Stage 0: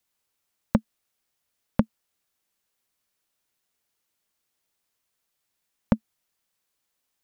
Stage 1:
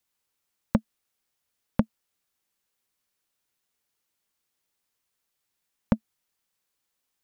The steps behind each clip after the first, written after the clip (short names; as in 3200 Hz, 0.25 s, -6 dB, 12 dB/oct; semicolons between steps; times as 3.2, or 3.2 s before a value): notch 650 Hz, Q 14; gain -1.5 dB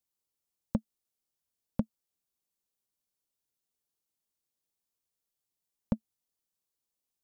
bell 1800 Hz -10 dB 1.8 oct; gain -6.5 dB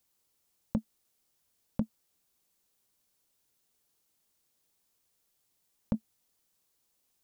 negative-ratio compressor -32 dBFS, ratio -1; gain +5.5 dB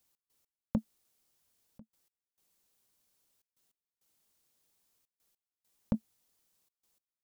step gate "x.x..xxxxxx" 101 bpm -24 dB